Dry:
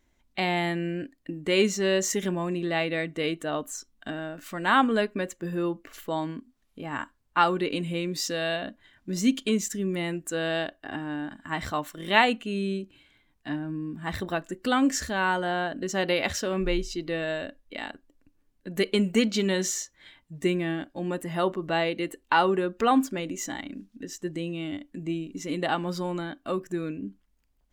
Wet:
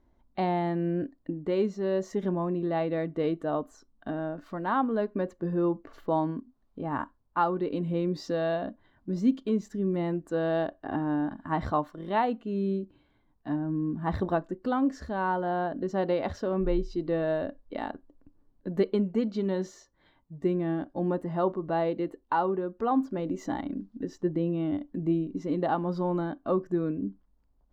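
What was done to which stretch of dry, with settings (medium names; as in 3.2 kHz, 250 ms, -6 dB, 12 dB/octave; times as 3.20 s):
24.22–24.75 s: low-pass 4 kHz
whole clip: FFT filter 1 kHz 0 dB, 2.5 kHz -18 dB, 4.5 kHz -13 dB, 8.1 kHz -27 dB; gain riding within 5 dB 0.5 s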